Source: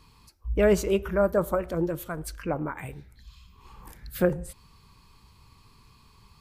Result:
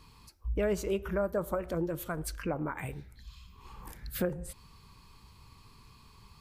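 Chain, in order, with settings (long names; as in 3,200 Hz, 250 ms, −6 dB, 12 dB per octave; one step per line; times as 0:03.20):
downward compressor 2.5 to 1, threshold −31 dBFS, peak gain reduction 10 dB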